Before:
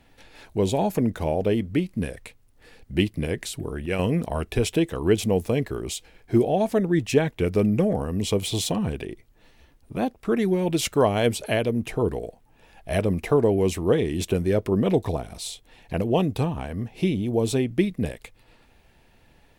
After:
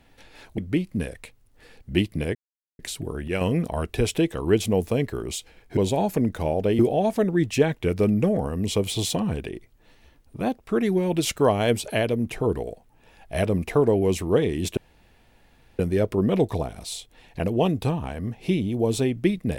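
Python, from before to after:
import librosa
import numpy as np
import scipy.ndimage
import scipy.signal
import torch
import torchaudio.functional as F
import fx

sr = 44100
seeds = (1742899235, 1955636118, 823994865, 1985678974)

y = fx.edit(x, sr, fx.move(start_s=0.58, length_s=1.02, to_s=6.35),
    fx.insert_silence(at_s=3.37, length_s=0.44),
    fx.insert_room_tone(at_s=14.33, length_s=1.02), tone=tone)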